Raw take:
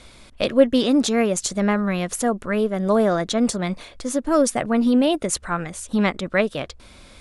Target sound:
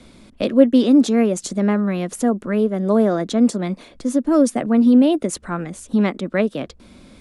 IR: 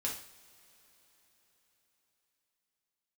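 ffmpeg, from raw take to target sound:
-filter_complex "[0:a]equalizer=f=230:w=0.73:g=14,acrossover=split=230|1200|1600[s0][s1][s2][s3];[s0]acompressor=threshold=0.0447:ratio=6[s4];[s4][s1][s2][s3]amix=inputs=4:normalize=0,volume=0.596"

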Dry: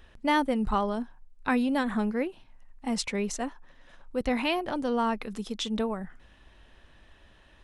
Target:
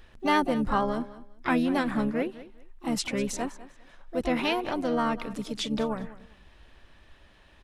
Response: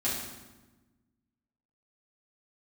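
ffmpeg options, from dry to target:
-filter_complex "[0:a]asplit=3[s0][s1][s2];[s1]asetrate=29433,aresample=44100,atempo=1.49831,volume=0.2[s3];[s2]asetrate=58866,aresample=44100,atempo=0.749154,volume=0.355[s4];[s0][s3][s4]amix=inputs=3:normalize=0,aecho=1:1:200|400:0.141|0.0311"

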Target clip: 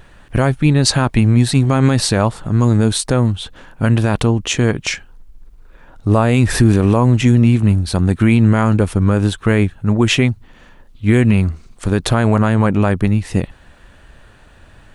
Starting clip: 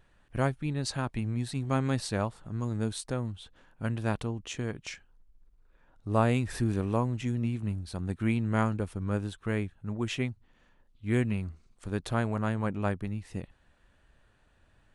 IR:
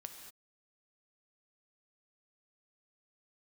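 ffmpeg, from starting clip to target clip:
-af "alimiter=level_in=11.2:limit=0.891:release=50:level=0:latency=1,volume=0.891"

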